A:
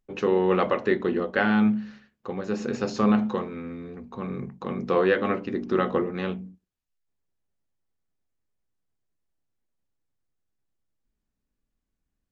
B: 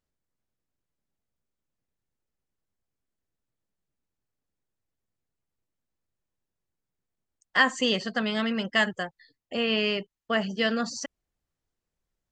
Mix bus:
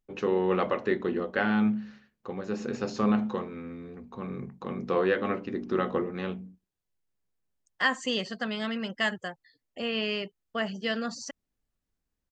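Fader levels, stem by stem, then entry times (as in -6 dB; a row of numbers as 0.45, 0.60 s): -4.0, -4.5 dB; 0.00, 0.25 s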